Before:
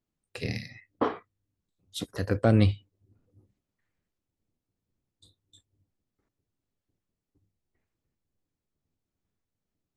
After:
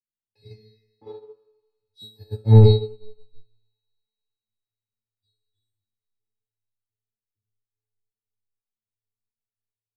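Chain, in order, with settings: bass shelf 380 Hz +10.5 dB; feedback comb 110 Hz, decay 0.65 s, harmonics all, mix 100%; saturation -19 dBFS, distortion -8 dB; feedback comb 430 Hz, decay 0.66 s, mix 100%; feedback echo behind a high-pass 109 ms, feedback 82%, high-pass 2.2 kHz, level -20 dB; reverberation RT60 1.0 s, pre-delay 3 ms, DRR 4 dB; loudness maximiser +33 dB; upward expansion 2.5:1, over -24 dBFS

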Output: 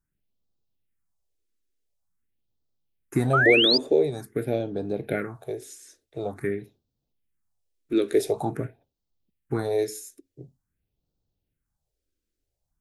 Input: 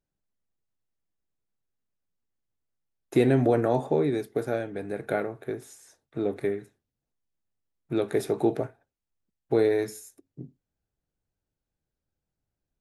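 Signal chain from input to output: phase shifter stages 4, 0.47 Hz, lowest notch 130–2000 Hz; painted sound rise, 3.33–3.78 s, 1.2–5.1 kHz -25 dBFS; trim +4.5 dB

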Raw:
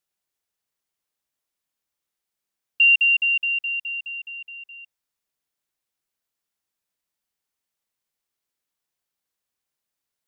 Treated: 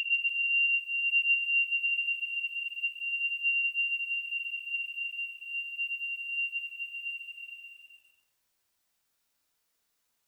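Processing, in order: Paulstretch 12×, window 0.25 s, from 4.27 s; bit-crushed delay 146 ms, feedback 55%, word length 11-bit, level -13.5 dB; trim +7 dB

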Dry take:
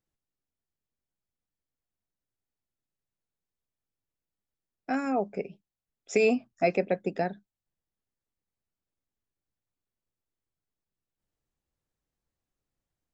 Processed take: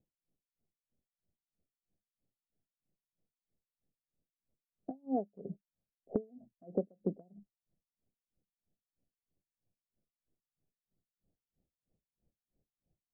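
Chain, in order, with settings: steep low-pass 730 Hz 48 dB/octave; peaking EQ 190 Hz +6 dB 1 oct; compression 6:1, threshold -36 dBFS, peak gain reduction 16.5 dB; logarithmic tremolo 3.1 Hz, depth 33 dB; trim +8 dB

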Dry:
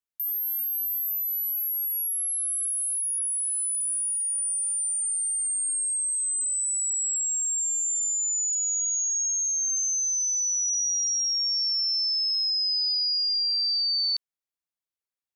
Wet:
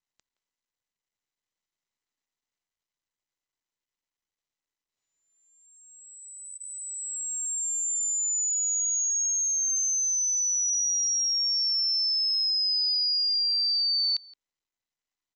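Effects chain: 1.36–2.62 s: comb 4.7 ms, depth 49%; speakerphone echo 170 ms, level -17 dB; SBC 128 kbps 16 kHz

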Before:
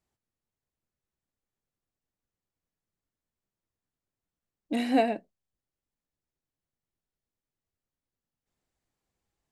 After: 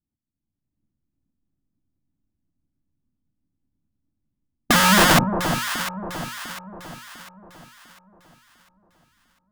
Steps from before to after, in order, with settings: pitch bend over the whole clip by -9 st starting unshifted; reverse; compression 4:1, threshold -34 dBFS, peak gain reduction 12.5 dB; reverse; resonant low shelf 350 Hz +7 dB, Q 3; waveshaping leveller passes 5; tilt shelf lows +9 dB; integer overflow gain 15.5 dB; level rider gain up to 15.5 dB; hum notches 60/120/180/240 Hz; on a send: echo whose repeats swap between lows and highs 350 ms, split 1 kHz, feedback 64%, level -6 dB; on the sum: trim -7 dB

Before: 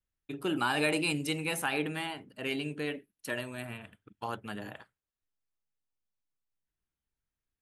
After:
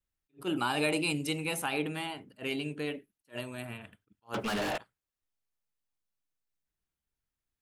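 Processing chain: 4.34–4.78 s: overdrive pedal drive 36 dB, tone 3.9 kHz, clips at -23.5 dBFS; dynamic bell 1.7 kHz, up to -6 dB, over -49 dBFS, Q 3.3; attacks held to a fixed rise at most 360 dB/s

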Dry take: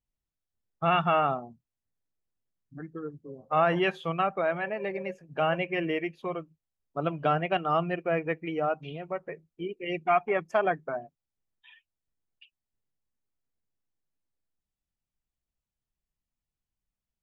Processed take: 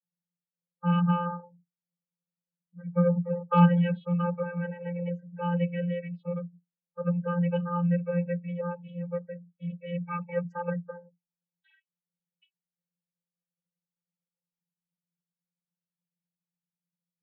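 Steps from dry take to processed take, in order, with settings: 2.91–3.65 s: waveshaping leveller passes 5; loudest bins only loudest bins 32; vocoder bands 32, square 174 Hz

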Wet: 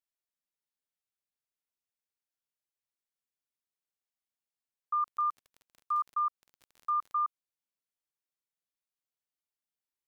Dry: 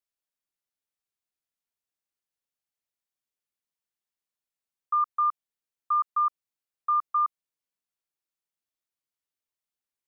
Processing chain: 5.01–7.22 s: crackle 31 per s -36 dBFS; trim -5.5 dB

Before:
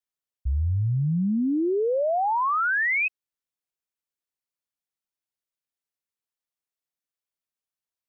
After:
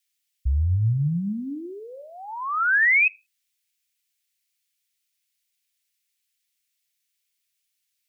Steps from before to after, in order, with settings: FFT filter 120 Hz 0 dB, 650 Hz -24 dB, 2.2 kHz +12 dB; compression 6:1, threshold -21 dBFS, peak gain reduction 10 dB; on a send: reverberation, pre-delay 3 ms, DRR 16.5 dB; on the sum: trim +3.5 dB

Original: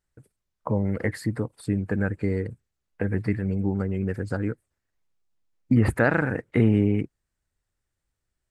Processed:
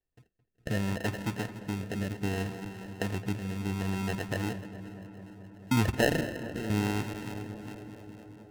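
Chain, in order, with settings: backward echo that repeats 204 ms, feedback 71%, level -13 dB; 3.70–4.15 s: transient shaper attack -2 dB, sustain +8 dB; 6.21–6.70 s: high-pass 610 Hz 6 dB/octave; sample-and-hold 38×; small resonant body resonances 1.8/2.7 kHz, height 13 dB, ringing for 45 ms; rotary cabinet horn 0.65 Hz, later 5 Hz, at 7.13 s; filtered feedback delay 217 ms, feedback 83%, low-pass 2.8 kHz, level -15.5 dB; trim -5.5 dB

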